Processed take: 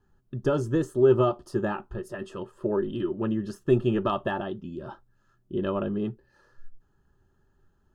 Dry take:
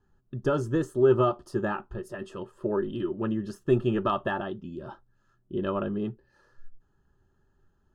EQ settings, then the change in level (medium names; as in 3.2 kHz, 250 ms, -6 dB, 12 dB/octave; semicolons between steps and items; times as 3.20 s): dynamic bell 1.4 kHz, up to -4 dB, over -40 dBFS, Q 1.5; +1.5 dB